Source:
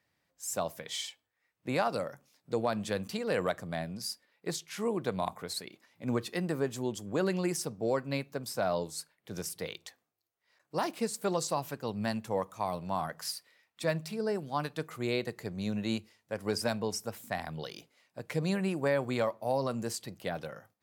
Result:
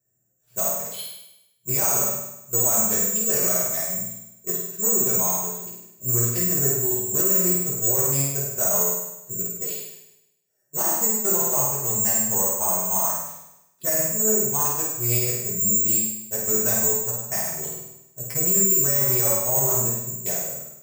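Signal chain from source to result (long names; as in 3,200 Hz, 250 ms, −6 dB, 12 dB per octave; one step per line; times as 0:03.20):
adaptive Wiener filter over 41 samples
bad sample-rate conversion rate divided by 6×, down filtered, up zero stuff
flutter between parallel walls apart 8.7 metres, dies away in 0.88 s
convolution reverb RT60 0.55 s, pre-delay 4 ms, DRR −6.5 dB
boost into a limiter +4 dB
level −8 dB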